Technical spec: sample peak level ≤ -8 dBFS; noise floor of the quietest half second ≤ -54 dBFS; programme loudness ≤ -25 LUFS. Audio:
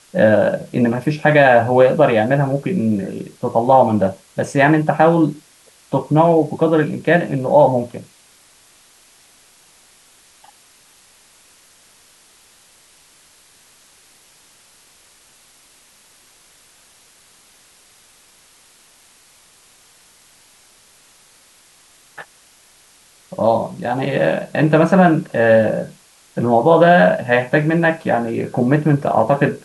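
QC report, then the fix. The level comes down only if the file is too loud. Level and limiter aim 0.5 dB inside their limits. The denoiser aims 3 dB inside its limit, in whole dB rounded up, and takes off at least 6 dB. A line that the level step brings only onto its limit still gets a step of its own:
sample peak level -1.5 dBFS: fail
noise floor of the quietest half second -51 dBFS: fail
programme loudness -15.5 LUFS: fail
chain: trim -10 dB

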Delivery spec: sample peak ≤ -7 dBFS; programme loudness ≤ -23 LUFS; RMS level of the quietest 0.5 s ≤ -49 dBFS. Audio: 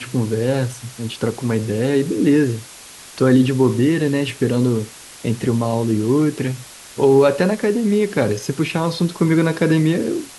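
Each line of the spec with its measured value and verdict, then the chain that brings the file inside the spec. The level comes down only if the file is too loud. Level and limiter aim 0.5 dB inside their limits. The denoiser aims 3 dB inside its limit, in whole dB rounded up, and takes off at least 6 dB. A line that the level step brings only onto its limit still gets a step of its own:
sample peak -4.0 dBFS: fail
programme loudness -18.5 LUFS: fail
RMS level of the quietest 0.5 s -40 dBFS: fail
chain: noise reduction 7 dB, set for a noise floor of -40 dBFS; trim -5 dB

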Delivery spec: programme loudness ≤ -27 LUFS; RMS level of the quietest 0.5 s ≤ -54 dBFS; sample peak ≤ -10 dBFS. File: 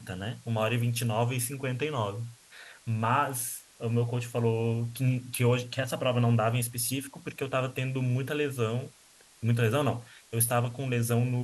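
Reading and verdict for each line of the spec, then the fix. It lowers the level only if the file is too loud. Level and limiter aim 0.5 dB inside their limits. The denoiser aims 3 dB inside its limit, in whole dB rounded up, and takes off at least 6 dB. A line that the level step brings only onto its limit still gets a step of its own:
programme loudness -29.5 LUFS: pass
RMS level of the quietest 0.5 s -58 dBFS: pass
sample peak -12.5 dBFS: pass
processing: none needed

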